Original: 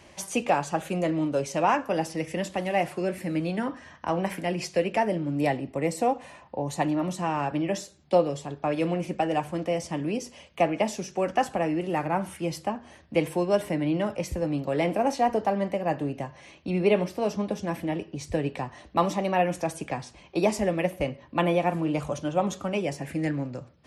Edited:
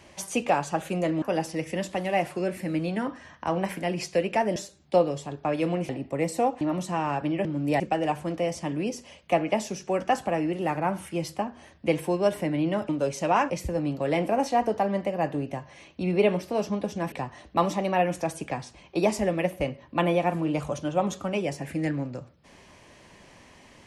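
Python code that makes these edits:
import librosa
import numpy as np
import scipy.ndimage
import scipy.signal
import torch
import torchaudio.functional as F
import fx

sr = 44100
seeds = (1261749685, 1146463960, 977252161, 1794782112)

y = fx.edit(x, sr, fx.move(start_s=1.22, length_s=0.61, to_s=14.17),
    fx.swap(start_s=5.17, length_s=0.35, other_s=7.75, other_length_s=1.33),
    fx.cut(start_s=6.24, length_s=0.67),
    fx.cut(start_s=17.79, length_s=0.73), tone=tone)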